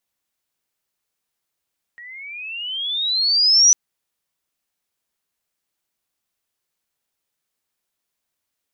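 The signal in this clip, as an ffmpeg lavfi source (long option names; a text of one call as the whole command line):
ffmpeg -f lavfi -i "aevalsrc='pow(10,(-8+28*(t/1.75-1))/20)*sin(2*PI*1880*1.75/(20*log(2)/12)*(exp(20*log(2)/12*t/1.75)-1))':duration=1.75:sample_rate=44100" out.wav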